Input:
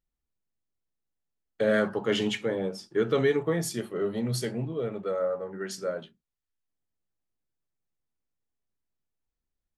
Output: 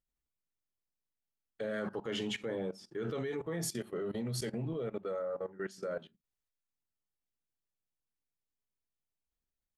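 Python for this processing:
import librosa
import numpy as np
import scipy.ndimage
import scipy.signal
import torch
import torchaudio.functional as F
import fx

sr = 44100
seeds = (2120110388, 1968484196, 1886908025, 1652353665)

y = fx.level_steps(x, sr, step_db=18)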